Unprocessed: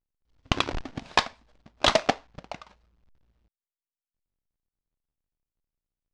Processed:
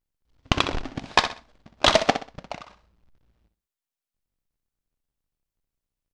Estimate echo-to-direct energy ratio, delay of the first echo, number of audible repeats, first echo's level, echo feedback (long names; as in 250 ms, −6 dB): −9.5 dB, 63 ms, 3, −10.0 dB, 29%